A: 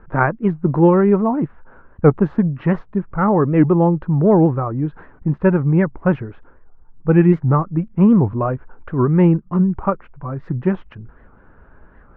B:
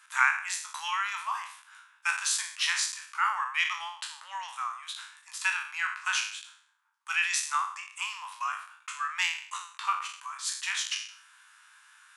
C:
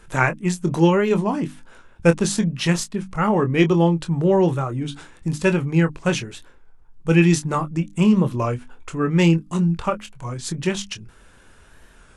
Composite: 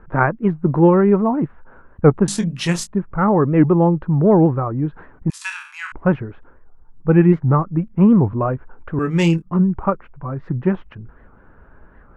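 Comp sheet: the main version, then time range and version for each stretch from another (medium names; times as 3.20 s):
A
2.28–2.87 s: from C
5.30–5.92 s: from B
8.99–9.42 s: from C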